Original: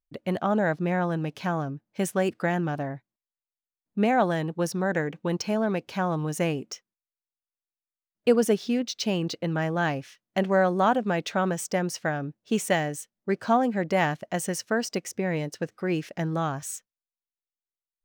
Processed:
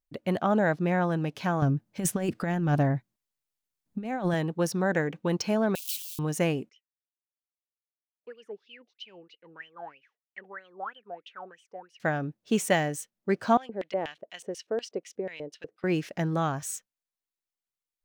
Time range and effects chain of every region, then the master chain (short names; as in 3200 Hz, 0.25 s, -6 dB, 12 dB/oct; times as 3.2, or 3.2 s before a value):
1.62–4.34 tone controls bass +7 dB, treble +2 dB + negative-ratio compressor -25 dBFS, ratio -0.5
5.75–6.19 switching spikes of -25.5 dBFS + steep high-pass 2800 Hz 48 dB/oct + high shelf 10000 Hz +3.5 dB
6.69–12 resonant low shelf 570 Hz +6.5 dB, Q 3 + wah 3.1 Hz 690–3100 Hz, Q 20
13.57–15.84 LFO band-pass square 4.1 Hz 450–3100 Hz + high shelf 10000 Hz +4.5 dB
whole clip: dry